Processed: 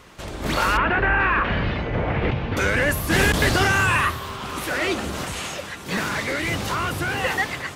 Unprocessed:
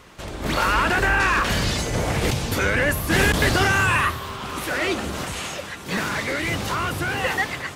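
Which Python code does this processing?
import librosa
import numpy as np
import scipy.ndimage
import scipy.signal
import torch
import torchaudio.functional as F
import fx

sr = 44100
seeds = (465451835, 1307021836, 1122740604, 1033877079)

y = fx.lowpass(x, sr, hz=2700.0, slope=24, at=(0.77, 2.57))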